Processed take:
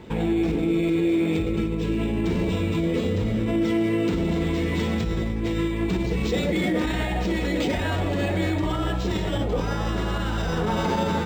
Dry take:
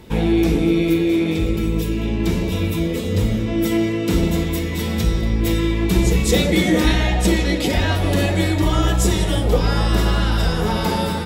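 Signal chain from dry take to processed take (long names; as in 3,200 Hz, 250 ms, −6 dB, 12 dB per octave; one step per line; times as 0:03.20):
high-frequency loss of the air 90 metres
in parallel at +1 dB: compressor whose output falls as the input rises −20 dBFS
on the sum: brickwall limiter −8 dBFS, peak gain reduction 6.5 dB
low-shelf EQ 77 Hz −9 dB
linearly interpolated sample-rate reduction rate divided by 4×
level −6 dB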